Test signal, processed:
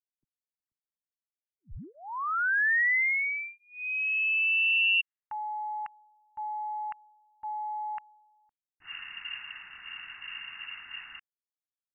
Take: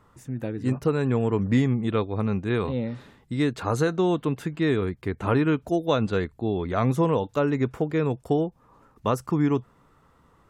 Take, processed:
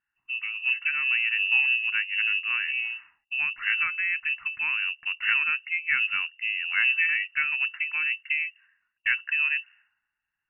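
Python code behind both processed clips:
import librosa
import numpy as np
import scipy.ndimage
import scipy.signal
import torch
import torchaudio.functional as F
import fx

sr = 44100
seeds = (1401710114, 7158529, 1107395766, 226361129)

y = fx.wiener(x, sr, points=9)
y = fx.fixed_phaser(y, sr, hz=950.0, stages=4)
y = fx.freq_invert(y, sr, carrier_hz=2800)
y = fx.env_lowpass(y, sr, base_hz=370.0, full_db=-29.0)
y = y * 10.0 ** (2.0 / 20.0)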